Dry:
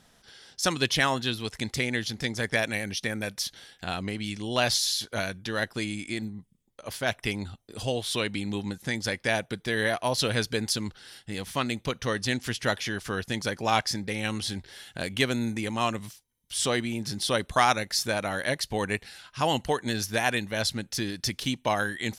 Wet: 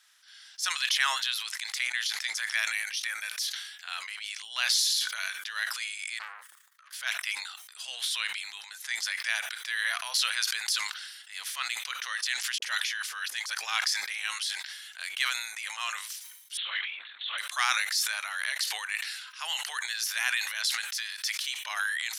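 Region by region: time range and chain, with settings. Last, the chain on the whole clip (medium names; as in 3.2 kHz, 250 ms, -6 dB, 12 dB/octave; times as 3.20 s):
6.19–6.93 s: high-order bell 1.4 kHz +14.5 dB 1 oct + compression 2:1, threshold -57 dBFS + transformer saturation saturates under 2.8 kHz
12.58–13.55 s: band-stop 1.4 kHz, Q 29 + phase dispersion highs, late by 43 ms, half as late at 470 Hz
16.57–17.38 s: high-pass 230 Hz 6 dB/octave + LPC vocoder at 8 kHz whisper
whole clip: transient shaper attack -3 dB, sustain +9 dB; high-pass 1.3 kHz 24 dB/octave; decay stretcher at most 54 dB/s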